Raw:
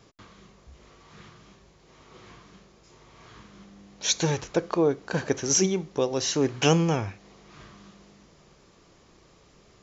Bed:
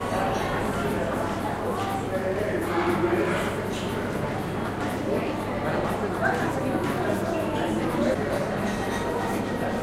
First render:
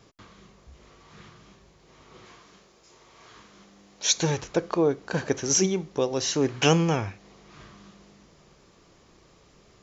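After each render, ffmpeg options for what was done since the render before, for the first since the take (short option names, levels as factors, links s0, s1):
-filter_complex "[0:a]asettb=1/sr,asplit=3[s0][s1][s2];[s0]atrim=end=2.254[s3];[s1]atrim=start=2.25:end=4.18,asetpts=PTS-STARTPTS,afade=t=in:d=0.004:c=qsin,afade=t=out:st=1.926:d=0.004:c=qsin,bass=f=250:g=-9,treble=f=4000:g=3[s4];[s2]atrim=start=4.176[s5];[s3][s4]acrossfade=d=0.004:c1=hsin:c2=qsin[s6];[s6][s5]acrossfade=d=0.004:c1=qsin:c2=hsin,asettb=1/sr,asplit=3[s7][s8][s9];[s7]atrim=end=6.484[s10];[s8]atrim=start=6.48:end=7.09,asetpts=PTS-STARTPTS,afade=t=in:d=0.004:c=qsin,afade=t=out:st=0.606:d=0.004:c=qsin,equalizer=f=1900:t=o:w=2:g=2.5[s11];[s9]atrim=start=7.086[s12];[s10][s11]acrossfade=d=0.004:c1=hsin:c2=qsin[s13];[s13][s12]acrossfade=d=0.004:c1=qsin:c2=hsin"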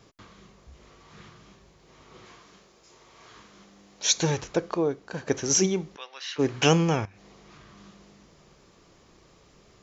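-filter_complex "[0:a]asplit=3[s0][s1][s2];[s0]afade=t=out:st=5.95:d=0.02[s3];[s1]asuperpass=centerf=2200:order=4:qfactor=0.96,afade=t=in:st=5.95:d=0.02,afade=t=out:st=6.38:d=0.02[s4];[s2]afade=t=in:st=6.38:d=0.02[s5];[s3][s4][s5]amix=inputs=3:normalize=0,asettb=1/sr,asplit=3[s6][s7][s8];[s6]atrim=end=7.054[s9];[s7]atrim=start=7.05:end=7.77,asetpts=PTS-STARTPTS,afade=t=in:d=0.004:c=qsin,afade=t=out:st=0.716:d=0.004:c=qsin,acompressor=threshold=0.00501:ratio=10:attack=3.2:release=140:knee=1:detection=peak[s10];[s8]atrim=start=7.766[s11];[s9][s10]acrossfade=d=0.004:c1=hsin:c2=qsin[s12];[s12][s11]acrossfade=d=0.004:c1=qsin:c2=hsin,asplit=2[s13][s14];[s13]atrim=end=5.27,asetpts=PTS-STARTPTS,afade=t=out:st=4.47:d=0.8:silence=0.334965[s15];[s14]atrim=start=5.27,asetpts=PTS-STARTPTS,afade=t=in:d=0.004:c=hsin:silence=0.334965[s16];[s15][s16]concat=n=2:v=0:a=1"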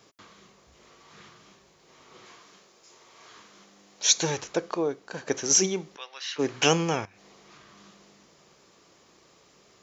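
-af "highpass=f=300:p=1,highshelf=f=5900:g=5"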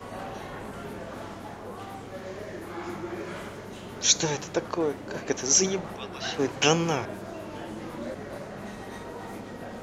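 -filter_complex "[1:a]volume=0.251[s0];[0:a][s0]amix=inputs=2:normalize=0"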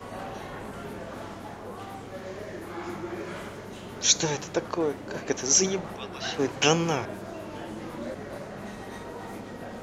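-af anull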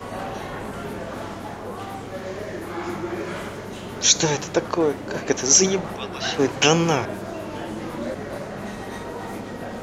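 -af "volume=2.11,alimiter=limit=0.708:level=0:latency=1"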